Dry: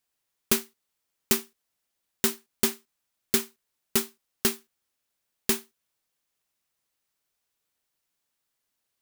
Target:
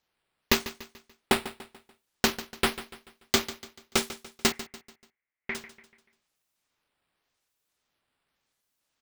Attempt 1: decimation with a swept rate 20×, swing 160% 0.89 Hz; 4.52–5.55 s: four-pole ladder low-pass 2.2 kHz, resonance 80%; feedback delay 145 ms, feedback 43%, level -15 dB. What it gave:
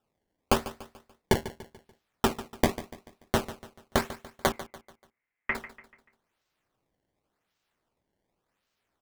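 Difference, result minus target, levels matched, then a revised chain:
decimation with a swept rate: distortion +5 dB
decimation with a swept rate 4×, swing 160% 0.89 Hz; 4.52–5.55 s: four-pole ladder low-pass 2.2 kHz, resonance 80%; feedback delay 145 ms, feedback 43%, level -15 dB

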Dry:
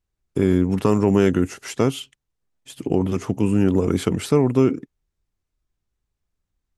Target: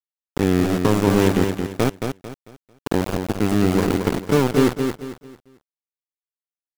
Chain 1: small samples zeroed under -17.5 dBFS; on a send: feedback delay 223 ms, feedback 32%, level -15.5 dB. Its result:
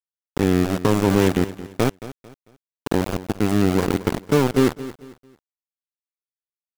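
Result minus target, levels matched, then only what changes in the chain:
echo-to-direct -9.5 dB
change: feedback delay 223 ms, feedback 32%, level -6 dB

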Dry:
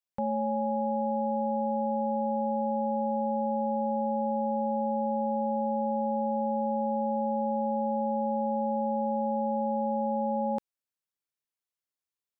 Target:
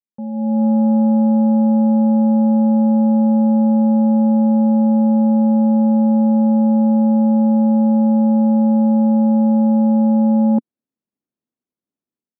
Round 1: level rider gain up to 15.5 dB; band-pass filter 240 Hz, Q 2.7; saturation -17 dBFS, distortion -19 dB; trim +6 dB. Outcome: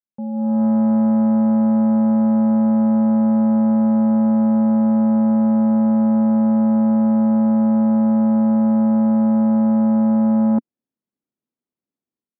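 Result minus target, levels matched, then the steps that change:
saturation: distortion +14 dB
change: saturation -8.5 dBFS, distortion -33 dB

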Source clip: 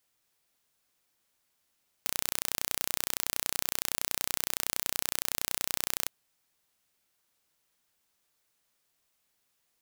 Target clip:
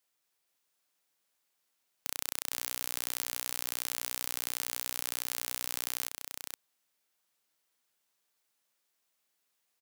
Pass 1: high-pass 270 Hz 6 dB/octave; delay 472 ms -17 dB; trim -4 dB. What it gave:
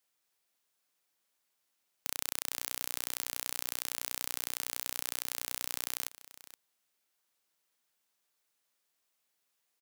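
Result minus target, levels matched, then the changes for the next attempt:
echo-to-direct -11 dB
change: delay 472 ms -6 dB

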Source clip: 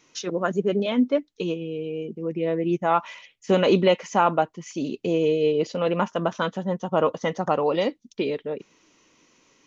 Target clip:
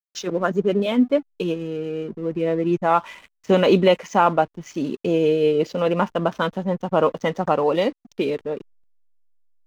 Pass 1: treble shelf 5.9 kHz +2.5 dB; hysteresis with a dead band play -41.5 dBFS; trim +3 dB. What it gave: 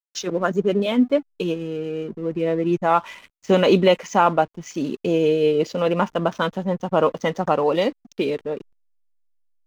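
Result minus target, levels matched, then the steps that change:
8 kHz band +3.5 dB
change: treble shelf 5.9 kHz -3.5 dB

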